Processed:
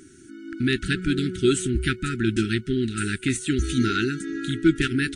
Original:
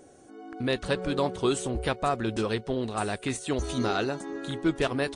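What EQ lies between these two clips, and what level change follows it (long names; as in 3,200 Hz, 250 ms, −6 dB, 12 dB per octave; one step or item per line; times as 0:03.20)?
dynamic equaliser 4,900 Hz, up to −5 dB, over −50 dBFS, Q 1.4
linear-phase brick-wall band-stop 400–1,300 Hz
+7.5 dB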